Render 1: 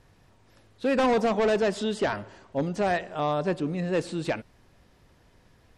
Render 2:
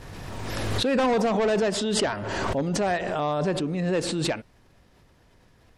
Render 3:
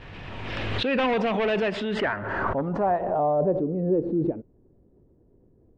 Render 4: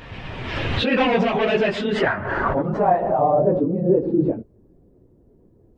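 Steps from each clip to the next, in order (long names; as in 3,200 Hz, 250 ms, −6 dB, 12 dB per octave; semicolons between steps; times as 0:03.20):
background raised ahead of every attack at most 23 dB per second
low-pass filter sweep 2,800 Hz → 380 Hz, 0:01.60–0:04.01; level −2 dB
random phases in long frames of 50 ms; level +5 dB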